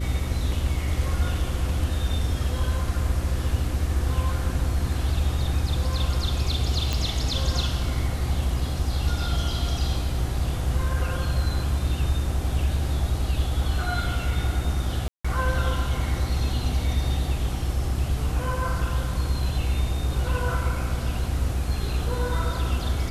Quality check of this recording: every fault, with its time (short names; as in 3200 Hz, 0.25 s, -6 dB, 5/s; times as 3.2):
hum 60 Hz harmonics 6 -29 dBFS
6.93 pop
15.08–15.24 gap 0.165 s